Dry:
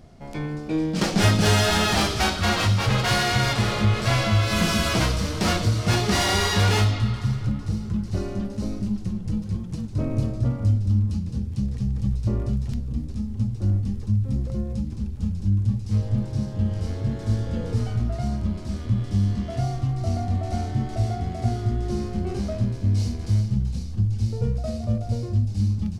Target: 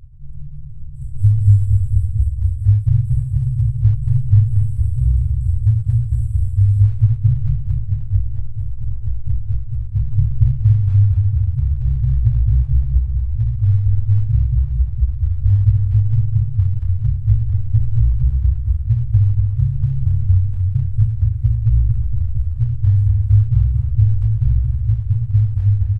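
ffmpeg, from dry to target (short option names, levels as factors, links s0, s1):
-filter_complex "[0:a]afftfilt=real='re*(1-between(b*sr/4096,150,7600))':imag='im*(1-between(b*sr/4096,150,7600))':win_size=4096:overlap=0.75,acrusher=bits=6:mode=log:mix=0:aa=0.000001,aemphasis=mode=reproduction:type=riaa,asplit=2[s0][s1];[s1]adelay=230,lowpass=f=3300:p=1,volume=0.531,asplit=2[s2][s3];[s3]adelay=230,lowpass=f=3300:p=1,volume=0.5,asplit=2[s4][s5];[s5]adelay=230,lowpass=f=3300:p=1,volume=0.5,asplit=2[s6][s7];[s7]adelay=230,lowpass=f=3300:p=1,volume=0.5,asplit=2[s8][s9];[s9]adelay=230,lowpass=f=3300:p=1,volume=0.5,asplit=2[s10][s11];[s11]adelay=230,lowpass=f=3300:p=1,volume=0.5[s12];[s2][s4][s6][s8][s10][s12]amix=inputs=6:normalize=0[s13];[s0][s13]amix=inputs=2:normalize=0,volume=0.531"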